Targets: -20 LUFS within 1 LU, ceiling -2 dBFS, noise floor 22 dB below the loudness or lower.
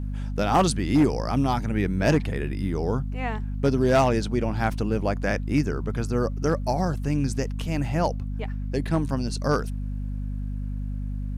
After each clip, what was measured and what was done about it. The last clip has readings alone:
clipped samples 0.4%; clipping level -13.0 dBFS; hum 50 Hz; highest harmonic 250 Hz; hum level -27 dBFS; loudness -25.5 LUFS; peak level -13.0 dBFS; loudness target -20.0 LUFS
-> clip repair -13 dBFS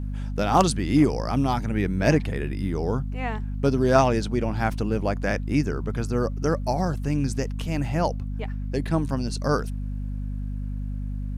clipped samples 0.0%; hum 50 Hz; highest harmonic 250 Hz; hum level -27 dBFS
-> hum notches 50/100/150/200/250 Hz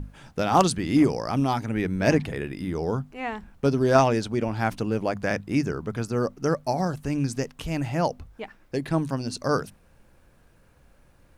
hum not found; loudness -25.5 LUFS; peak level -4.0 dBFS; loudness target -20.0 LUFS
-> trim +5.5 dB; peak limiter -2 dBFS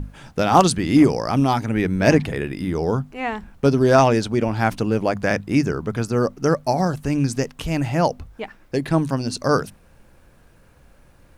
loudness -20.5 LUFS; peak level -2.0 dBFS; noise floor -52 dBFS

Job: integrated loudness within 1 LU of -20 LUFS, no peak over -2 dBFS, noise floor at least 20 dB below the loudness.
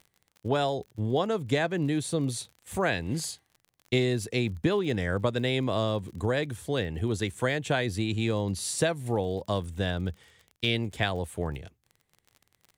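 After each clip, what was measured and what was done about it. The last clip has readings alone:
tick rate 42 per s; loudness -29.0 LUFS; peak level -12.5 dBFS; loudness target -20.0 LUFS
-> de-click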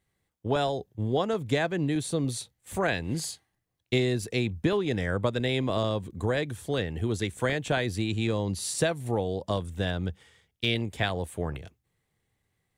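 tick rate 0.23 per s; loudness -29.0 LUFS; peak level -12.0 dBFS; loudness target -20.0 LUFS
-> trim +9 dB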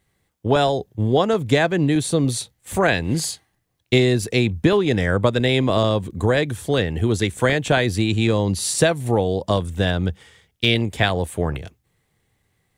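loudness -20.0 LUFS; peak level -3.0 dBFS; noise floor -70 dBFS

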